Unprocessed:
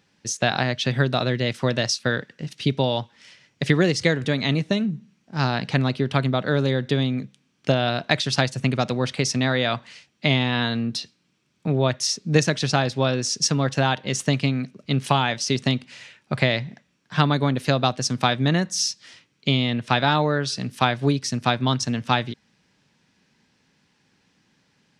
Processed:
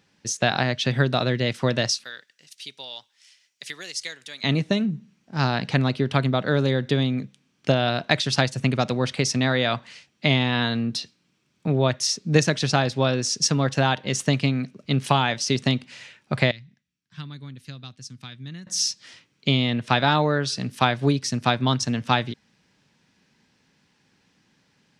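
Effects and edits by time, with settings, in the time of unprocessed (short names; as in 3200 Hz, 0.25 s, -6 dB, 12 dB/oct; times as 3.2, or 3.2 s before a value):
2.04–4.44 differentiator
16.51–18.67 passive tone stack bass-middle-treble 6-0-2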